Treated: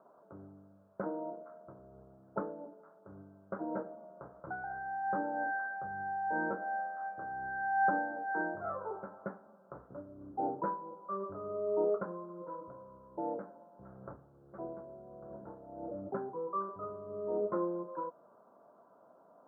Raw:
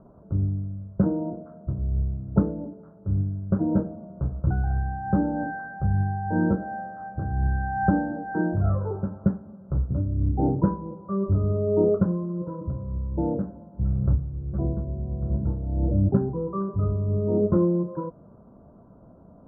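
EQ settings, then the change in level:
high-pass filter 730 Hz 12 dB per octave
0.0 dB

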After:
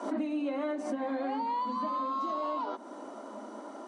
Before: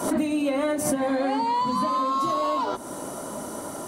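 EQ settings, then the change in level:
Chebyshev high-pass with heavy ripple 210 Hz, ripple 3 dB
linear-phase brick-wall low-pass 11,000 Hz
high-frequency loss of the air 140 metres
−7.0 dB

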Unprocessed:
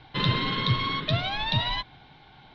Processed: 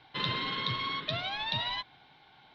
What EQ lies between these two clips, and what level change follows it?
low-shelf EQ 84 Hz −10.5 dB
low-shelf EQ 390 Hz −6.5 dB
−4.5 dB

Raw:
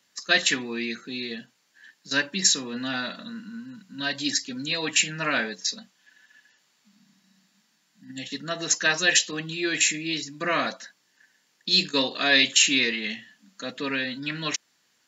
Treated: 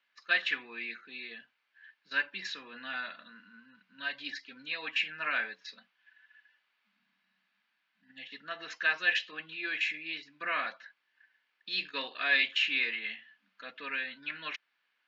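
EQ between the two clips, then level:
resonant band-pass 2,100 Hz, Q 1.3
high-frequency loss of the air 280 metres
notch filter 1,900 Hz, Q 11
0.0 dB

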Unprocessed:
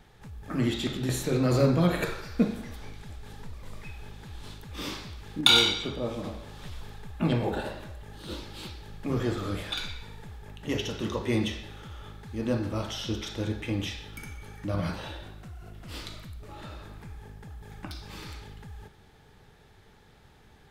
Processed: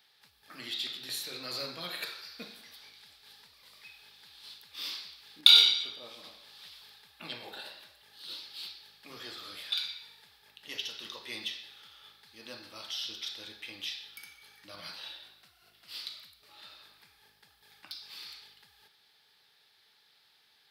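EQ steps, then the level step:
first difference
high shelf with overshoot 5,600 Hz −7 dB, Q 3
+4.0 dB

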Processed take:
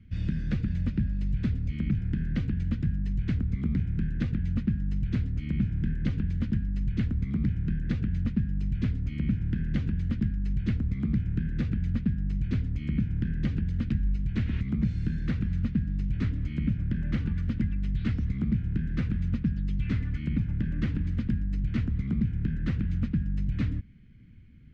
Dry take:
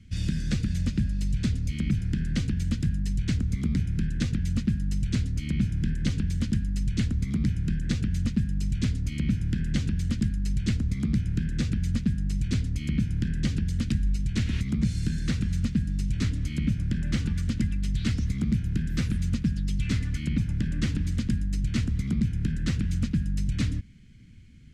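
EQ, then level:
low-pass filter 2,100 Hz 12 dB per octave
−1.5 dB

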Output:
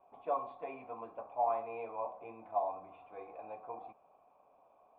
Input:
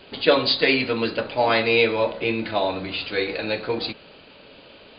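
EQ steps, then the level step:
formant resonators in series a
−2.5 dB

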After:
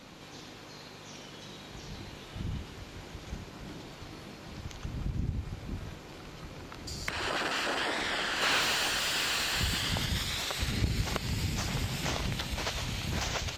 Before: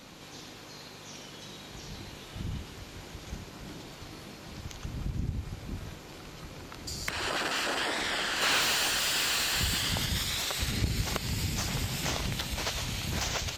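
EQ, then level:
high-shelf EQ 6,200 Hz −7.5 dB
0.0 dB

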